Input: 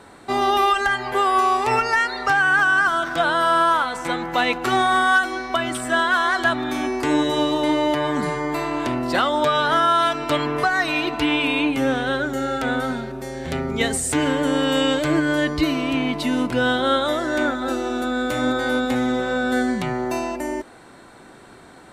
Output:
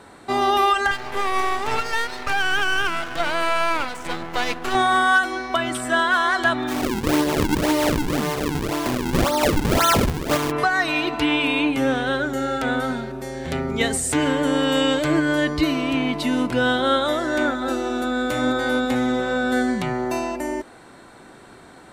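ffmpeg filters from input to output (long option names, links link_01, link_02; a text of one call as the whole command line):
ffmpeg -i in.wav -filter_complex "[0:a]asettb=1/sr,asplit=3[link_01][link_02][link_03];[link_01]atrim=end=0.914[link_04];[link_02]atrim=start=0.91:end=4.75,asetpts=PTS-STARTPTS,afade=type=in:duration=0.004:curve=qsin,afade=type=out:start_time=3.836:duration=0.004:curve=qsin,aeval=exprs='max(val(0),0)':channel_layout=same[link_05];[link_03]atrim=start=4.746[link_06];[link_04][link_05]acrossfade=duration=0.004:curve1=hsin:curve2=qsin[link_07];[link_07][link_06]acrossfade=duration=0.004:curve1=qsin:curve2=hsin,asplit=3[link_08][link_09][link_10];[link_08]afade=type=out:start_time=6.67:duration=0.02[link_11];[link_09]acrusher=samples=42:mix=1:aa=0.000001:lfo=1:lforange=67.2:lforate=1.9,afade=type=in:start_time=6.67:duration=0.02,afade=type=out:start_time=10.5:duration=0.02[link_12];[link_10]afade=type=in:start_time=10.5:duration=0.02[link_13];[link_11][link_12][link_13]amix=inputs=3:normalize=0" out.wav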